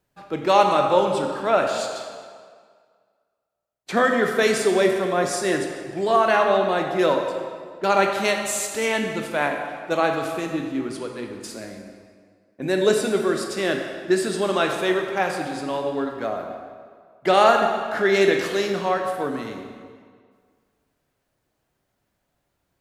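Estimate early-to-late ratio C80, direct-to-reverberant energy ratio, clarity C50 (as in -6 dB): 5.5 dB, 2.5 dB, 4.5 dB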